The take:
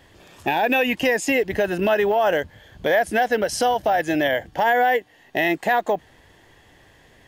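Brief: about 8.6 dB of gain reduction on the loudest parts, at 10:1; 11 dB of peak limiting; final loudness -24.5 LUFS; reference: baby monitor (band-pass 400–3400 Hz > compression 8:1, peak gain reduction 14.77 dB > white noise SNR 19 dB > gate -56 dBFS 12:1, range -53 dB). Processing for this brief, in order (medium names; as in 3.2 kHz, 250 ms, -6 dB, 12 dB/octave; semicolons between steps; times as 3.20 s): compression 10:1, threshold -24 dBFS; peak limiter -22 dBFS; band-pass 400–3400 Hz; compression 8:1, threshold -41 dBFS; white noise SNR 19 dB; gate -56 dBFS 12:1, range -53 dB; trim +20.5 dB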